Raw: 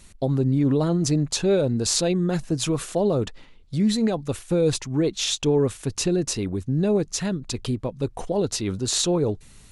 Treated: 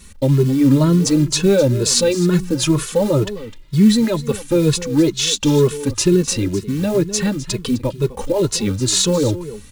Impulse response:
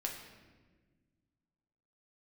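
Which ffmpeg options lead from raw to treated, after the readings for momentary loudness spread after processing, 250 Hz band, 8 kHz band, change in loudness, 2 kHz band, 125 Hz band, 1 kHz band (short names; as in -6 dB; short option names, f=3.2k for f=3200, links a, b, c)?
8 LU, +7.5 dB, +7.0 dB, +7.0 dB, +7.5 dB, +7.0 dB, +4.0 dB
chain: -filter_complex "[0:a]acontrast=38,acrusher=bits=6:mode=log:mix=0:aa=0.000001,asuperstop=centerf=710:order=4:qfactor=4.2,aecho=1:1:256:0.168,asplit=2[a][b];[b]adelay=2.3,afreqshift=2.1[c];[a][c]amix=inputs=2:normalize=1,volume=4.5dB"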